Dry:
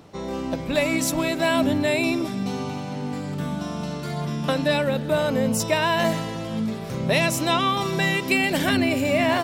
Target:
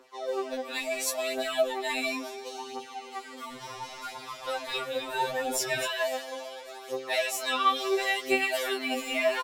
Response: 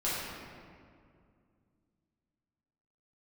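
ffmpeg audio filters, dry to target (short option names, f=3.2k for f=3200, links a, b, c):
-filter_complex "[0:a]highpass=f=430:w=0.5412,highpass=f=430:w=1.3066,alimiter=limit=-13.5dB:level=0:latency=1:release=280,aphaser=in_gain=1:out_gain=1:delay=4.5:decay=0.76:speed=0.72:type=triangular,asplit=3[a][b][c];[a]afade=t=out:st=3.5:d=0.02[d];[b]asplit=7[e][f][g][h][i][j][k];[f]adelay=264,afreqshift=-130,volume=-7.5dB[l];[g]adelay=528,afreqshift=-260,volume=-13dB[m];[h]adelay=792,afreqshift=-390,volume=-18.5dB[n];[i]adelay=1056,afreqshift=-520,volume=-24dB[o];[j]adelay=1320,afreqshift=-650,volume=-29.6dB[p];[k]adelay=1584,afreqshift=-780,volume=-35.1dB[q];[e][l][m][n][o][p][q]amix=inputs=7:normalize=0,afade=t=in:st=3.5:d=0.02,afade=t=out:st=5.85:d=0.02[r];[c]afade=t=in:st=5.85:d=0.02[s];[d][r][s]amix=inputs=3:normalize=0,afftfilt=real='re*2.45*eq(mod(b,6),0)':imag='im*2.45*eq(mod(b,6),0)':win_size=2048:overlap=0.75,volume=-5dB"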